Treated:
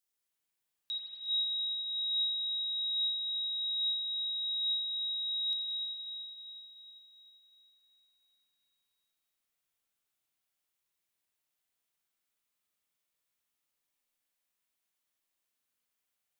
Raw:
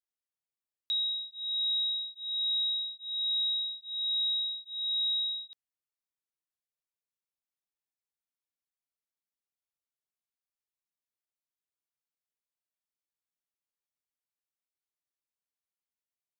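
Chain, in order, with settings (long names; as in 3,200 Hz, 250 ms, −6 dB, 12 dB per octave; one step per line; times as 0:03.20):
high-shelf EQ 3,500 Hz +11 dB
brickwall limiter −32.5 dBFS, peak gain reduction 12.5 dB
convolution reverb RT60 3.9 s, pre-delay 41 ms, DRR −6 dB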